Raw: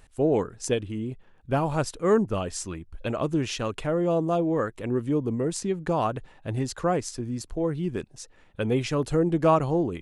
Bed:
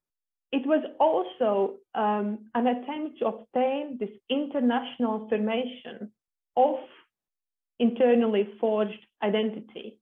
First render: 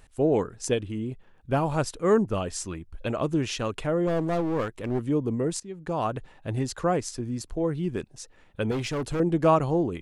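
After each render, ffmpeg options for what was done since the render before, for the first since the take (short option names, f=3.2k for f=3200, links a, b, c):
-filter_complex "[0:a]asettb=1/sr,asplit=3[a][b][c];[a]atrim=end=4.074[d];[b]atrim=start=4.07:end=4.99,asetpts=PTS-STARTPTS,afade=t=in:d=0.004:c=qsin,afade=t=out:st=0.916:d=0.004:c=qsin,aeval=exprs='clip(val(0),-1,0.0355)':c=same[e];[c]atrim=start=4.986[f];[d][e]acrossfade=d=0.004:c1=hsin:c2=qsin[g];[g][f]acrossfade=d=0.004:c1=qsin:c2=hsin,asettb=1/sr,asplit=3[h][i][j];[h]atrim=end=8.714[k];[i]atrim=start=8.71:end=9.2,asetpts=PTS-STARTPTS,afade=t=in:d=0.004:c=qsin,afade=t=out:st=0.486:d=0.004:c=qsin,volume=25.5dB,asoftclip=hard,volume=-25.5dB[l];[j]atrim=start=9.196[m];[k][l]acrossfade=d=0.004:c1=hsin:c2=qsin[n];[n][m]acrossfade=d=0.004:c1=qsin:c2=hsin,asplit=2[o][p];[o]atrim=end=5.6,asetpts=PTS-STARTPTS,afade=t=out:st=5.596:d=0.004:c=hsin:silence=0.105925[q];[p]atrim=start=5.6,asetpts=PTS-STARTPTS,afade=t=in:d=0.56:silence=0.105925[r];[q][r]concat=n=2:v=0:a=1"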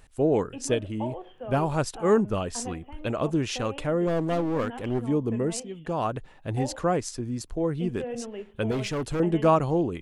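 -filter_complex "[1:a]volume=-13.5dB[a];[0:a][a]amix=inputs=2:normalize=0"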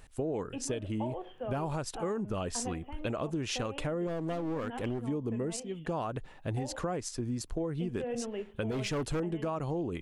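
-af "alimiter=limit=-19.5dB:level=0:latency=1:release=152,acompressor=threshold=-30dB:ratio=6"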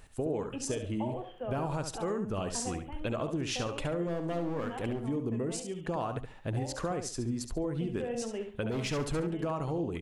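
-af "aecho=1:1:70|140|210:0.398|0.0916|0.0211"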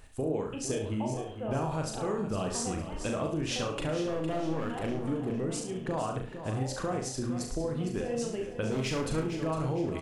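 -filter_complex "[0:a]asplit=2[a][b];[b]adelay=38,volume=-5dB[c];[a][c]amix=inputs=2:normalize=0,aecho=1:1:458|916|1374|1832|2290:0.299|0.128|0.0552|0.0237|0.0102"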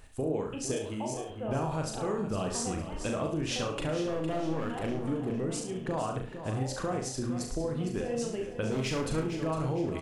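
-filter_complex "[0:a]asettb=1/sr,asplit=3[a][b][c];[a]atrim=end=0.764[d];[b]atrim=start=0.76:end=1.3,asetpts=PTS-STARTPTS,afade=t=in:d=0.004:c=qsin,afade=t=out:st=0.536:d=0.004:c=qsin,bass=f=250:g=-7,treble=f=4k:g=6[e];[c]atrim=start=1.296[f];[d][e]acrossfade=d=0.004:c1=hsin:c2=qsin[g];[g][f]acrossfade=d=0.004:c1=qsin:c2=hsin"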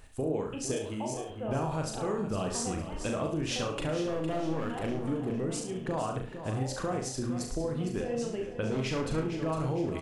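-filter_complex "[0:a]asettb=1/sr,asplit=3[a][b][c];[a]atrim=end=8.044[d];[b]atrim=start=8.04:end=9.48,asetpts=PTS-STARTPTS,afade=t=in:d=0.004:c=qsin,afade=t=out:st=1.436:d=0.004:c=qsin,highshelf=f=8.2k:g=-10[e];[c]atrim=start=9.476[f];[d][e]acrossfade=d=0.004:c1=hsin:c2=qsin[g];[g][f]acrossfade=d=0.004:c1=qsin:c2=hsin"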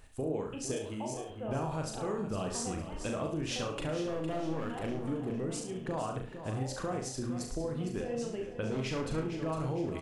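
-af "volume=-3dB"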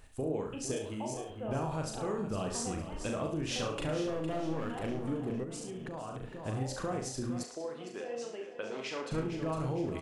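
-filter_complex "[0:a]asettb=1/sr,asplit=3[a][b][c];[a]atrim=end=3.504[d];[b]atrim=start=3.5:end=4.1,asetpts=PTS-STARTPTS,afade=t=in:d=0.004:c=qsin,afade=t=out:st=0.596:d=0.004:c=qsin,asplit=2[e][f];[f]adelay=38,volume=-13dB[g];[e][g]amix=inputs=2:normalize=0,atrim=end_sample=26460[h];[c]atrim=start=4.096[i];[d][h]acrossfade=d=0.004:c1=hsin:c2=qsin[j];[j][i]acrossfade=d=0.004:c1=qsin:c2=hsin,asettb=1/sr,asplit=3[k][l][m];[k]atrim=end=5.434[n];[l]atrim=start=5.43:end=6.23,asetpts=PTS-STARTPTS,afade=t=in:d=0.004:c=qsin,afade=t=out:st=0.796:d=0.004:c=qsin,acompressor=threshold=-37dB:ratio=6:attack=3.2:release=140:knee=1:detection=peak[o];[m]atrim=start=6.226[p];[n][o]acrossfade=d=0.004:c1=hsin:c2=qsin[q];[q][p]acrossfade=d=0.004:c1=qsin:c2=hsin,asettb=1/sr,asplit=3[r][s][t];[r]atrim=end=7.434[u];[s]atrim=start=7.43:end=9.12,asetpts=PTS-STARTPTS,afade=t=in:d=0.004:c=qsin,afade=t=out:st=1.686:d=0.004:c=qsin,highpass=440,lowpass=7.4k[v];[t]atrim=start=9.116[w];[u][v]acrossfade=d=0.004:c1=hsin:c2=qsin[x];[x][w]acrossfade=d=0.004:c1=qsin:c2=hsin"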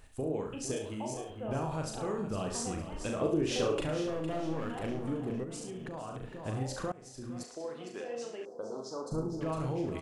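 -filter_complex "[0:a]asettb=1/sr,asplit=3[a][b][c];[a]atrim=end=3.214[d];[b]atrim=start=3.21:end=3.81,asetpts=PTS-STARTPTS,afade=t=in:d=0.004:c=qsin,afade=t=out:st=0.596:d=0.004:c=qsin,equalizer=f=400:t=o:w=0.77:g=11.5[e];[c]atrim=start=3.806[f];[d][e]acrossfade=d=0.004:c1=hsin:c2=qsin[g];[g][f]acrossfade=d=0.004:c1=qsin:c2=hsin,asettb=1/sr,asplit=3[h][i][j];[h]atrim=end=8.454[k];[i]atrim=start=8.45:end=9.41,asetpts=PTS-STARTPTS,afade=t=in:d=0.004:c=qsin,afade=t=out:st=0.956:d=0.004:c=qsin,asuperstop=centerf=2400:order=8:qfactor=0.7[l];[j]atrim=start=9.406[m];[k][l]acrossfade=d=0.004:c1=hsin:c2=qsin[n];[n][m]acrossfade=d=0.004:c1=qsin:c2=hsin,asplit=2[o][p];[o]atrim=end=6.92,asetpts=PTS-STARTPTS,afade=t=out:st=6.916:d=0.004:c=hsin:silence=0.0794328[q];[p]atrim=start=6.92,asetpts=PTS-STARTPTS,afade=t=in:d=0.78:silence=0.0794328[r];[q][r]concat=n=2:v=0:a=1"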